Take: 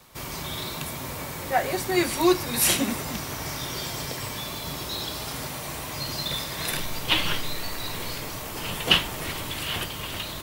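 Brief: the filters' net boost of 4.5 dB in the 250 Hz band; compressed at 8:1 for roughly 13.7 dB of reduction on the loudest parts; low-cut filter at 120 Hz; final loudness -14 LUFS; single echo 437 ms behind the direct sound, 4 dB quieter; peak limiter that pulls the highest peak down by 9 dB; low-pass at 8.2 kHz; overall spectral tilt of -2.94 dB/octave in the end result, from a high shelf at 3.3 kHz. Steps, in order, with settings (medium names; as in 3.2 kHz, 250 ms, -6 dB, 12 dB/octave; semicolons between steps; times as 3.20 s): high-pass 120 Hz; low-pass 8.2 kHz; peaking EQ 250 Hz +7 dB; treble shelf 3.3 kHz +3.5 dB; compression 8:1, threshold -28 dBFS; peak limiter -24.5 dBFS; delay 437 ms -4 dB; trim +18 dB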